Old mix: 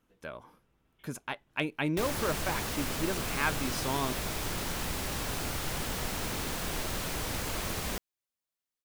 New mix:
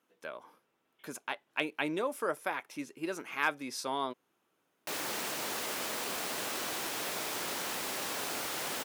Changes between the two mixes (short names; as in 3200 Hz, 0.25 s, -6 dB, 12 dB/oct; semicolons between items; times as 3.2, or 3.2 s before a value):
background: entry +2.90 s; master: add HPF 340 Hz 12 dB/oct